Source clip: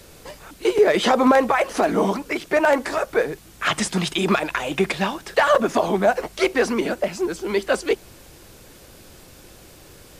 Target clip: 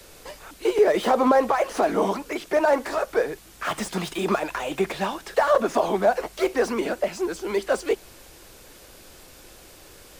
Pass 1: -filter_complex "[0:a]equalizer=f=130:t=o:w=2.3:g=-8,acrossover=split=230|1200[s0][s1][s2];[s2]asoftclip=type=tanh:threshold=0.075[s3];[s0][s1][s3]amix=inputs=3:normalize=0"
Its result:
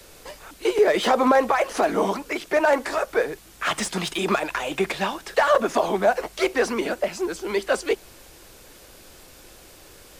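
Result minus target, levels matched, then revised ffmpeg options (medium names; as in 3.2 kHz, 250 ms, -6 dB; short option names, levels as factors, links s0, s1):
saturation: distortion -8 dB
-filter_complex "[0:a]equalizer=f=130:t=o:w=2.3:g=-8,acrossover=split=230|1200[s0][s1][s2];[s2]asoftclip=type=tanh:threshold=0.0224[s3];[s0][s1][s3]amix=inputs=3:normalize=0"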